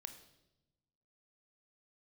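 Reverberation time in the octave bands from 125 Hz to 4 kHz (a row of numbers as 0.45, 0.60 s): 1.6, 1.4, 1.1, 0.80, 0.75, 0.85 s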